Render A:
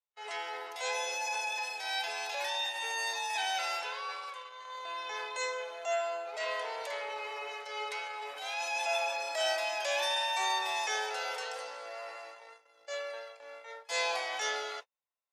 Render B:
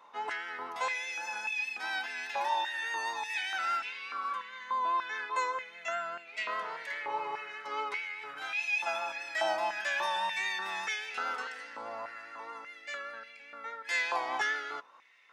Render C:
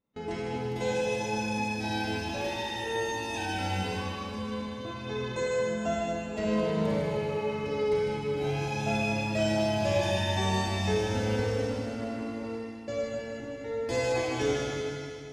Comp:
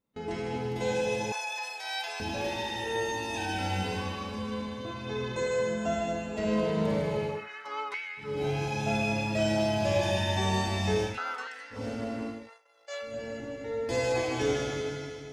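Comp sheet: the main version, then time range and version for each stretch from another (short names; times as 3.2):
C
1.32–2.2 from A
7.37–8.28 from B, crossfade 0.24 s
11.11–11.78 from B, crossfade 0.16 s
12.38–13.12 from A, crossfade 0.24 s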